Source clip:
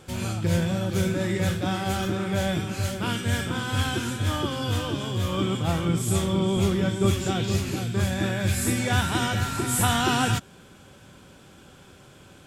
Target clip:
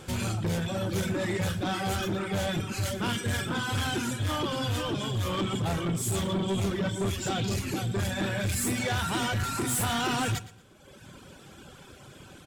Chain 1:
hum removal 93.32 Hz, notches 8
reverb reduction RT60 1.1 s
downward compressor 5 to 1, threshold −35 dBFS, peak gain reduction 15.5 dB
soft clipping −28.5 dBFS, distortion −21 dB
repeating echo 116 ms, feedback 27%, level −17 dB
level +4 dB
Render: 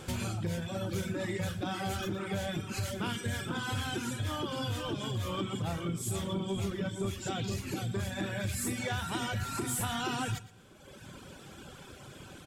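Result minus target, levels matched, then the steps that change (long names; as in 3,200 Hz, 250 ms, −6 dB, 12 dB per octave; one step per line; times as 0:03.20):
downward compressor: peak gain reduction +9.5 dB
change: downward compressor 5 to 1, threshold −23 dBFS, peak gain reduction 6 dB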